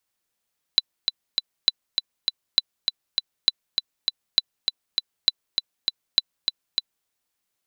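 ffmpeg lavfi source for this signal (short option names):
-f lavfi -i "aevalsrc='pow(10,(-2.5-5.5*gte(mod(t,3*60/200),60/200))/20)*sin(2*PI*3990*mod(t,60/200))*exp(-6.91*mod(t,60/200)/0.03)':d=6.3:s=44100"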